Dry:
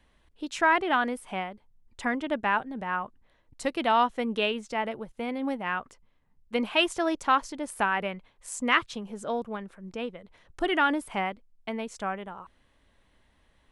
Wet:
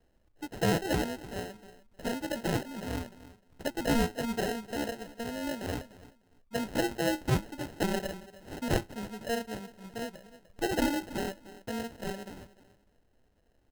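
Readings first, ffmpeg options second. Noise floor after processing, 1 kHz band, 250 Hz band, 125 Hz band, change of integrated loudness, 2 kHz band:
−69 dBFS, −11.0 dB, −1.0 dB, +10.5 dB, −5.0 dB, −9.5 dB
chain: -filter_complex "[0:a]asplit=2[link_01][link_02];[link_02]adelay=301,lowpass=frequency=1600:poles=1,volume=-15.5dB,asplit=2[link_03][link_04];[link_04]adelay=301,lowpass=frequency=1600:poles=1,volume=0.22[link_05];[link_01][link_03][link_05]amix=inputs=3:normalize=0,flanger=delay=8.6:depth=1:regen=77:speed=1.6:shape=sinusoidal,acrusher=samples=38:mix=1:aa=0.000001"

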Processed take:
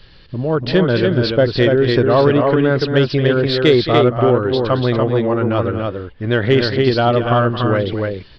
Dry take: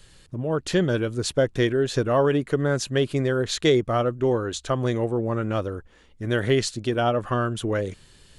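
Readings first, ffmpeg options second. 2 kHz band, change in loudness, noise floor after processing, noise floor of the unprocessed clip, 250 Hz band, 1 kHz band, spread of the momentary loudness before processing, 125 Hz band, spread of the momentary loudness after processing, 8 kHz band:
+8.5 dB, +8.5 dB, −42 dBFS, −54 dBFS, +9.0 dB, +9.0 dB, 7 LU, +9.0 dB, 8 LU, below −10 dB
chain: -af "aecho=1:1:221.6|288.6:0.251|0.631,aresample=11025,aresample=44100,acontrast=52,volume=1.5dB"

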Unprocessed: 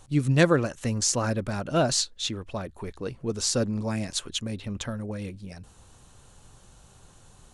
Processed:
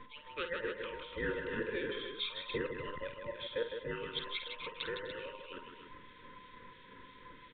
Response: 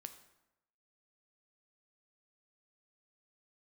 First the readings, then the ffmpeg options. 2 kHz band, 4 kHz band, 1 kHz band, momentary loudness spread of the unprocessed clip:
−5.5 dB, −9.5 dB, −11.0 dB, 14 LU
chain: -filter_complex "[0:a]afftfilt=real='real(if(between(b,1,1008),(2*floor((b-1)/48)+1)*48-b,b),0)':imag='imag(if(between(b,1,1008),(2*floor((b-1)/48)+1)*48-b,b),0)*if(between(b,1,1008),-1,1)':win_size=2048:overlap=0.75,bandreject=frequency=206.2:width_type=h:width=4,bandreject=frequency=412.4:width_type=h:width=4,bandreject=frequency=618.6:width_type=h:width=4,bandreject=frequency=824.8:width_type=h:width=4,bandreject=frequency=1031:width_type=h:width=4,bandreject=frequency=1237.2:width_type=h:width=4,bandreject=frequency=1443.4:width_type=h:width=4,bandreject=frequency=1649.6:width_type=h:width=4,bandreject=frequency=1855.8:width_type=h:width=4,bandreject=frequency=2062:width_type=h:width=4,bandreject=frequency=2268.2:width_type=h:width=4,acompressor=threshold=-35dB:ratio=4,acrossover=split=2300[link_01][link_02];[link_01]aeval=exprs='val(0)*(1-0.7/2+0.7/2*cos(2*PI*3*n/s))':channel_layout=same[link_03];[link_02]aeval=exprs='val(0)*(1-0.7/2-0.7/2*cos(2*PI*3*n/s))':channel_layout=same[link_04];[link_03][link_04]amix=inputs=2:normalize=0,asuperstop=centerf=760:order=8:qfactor=1.4,aresample=8000,aresample=44100,aecho=1:1:51|158|251|290:0.355|0.473|0.15|0.355,volume=6.5dB"

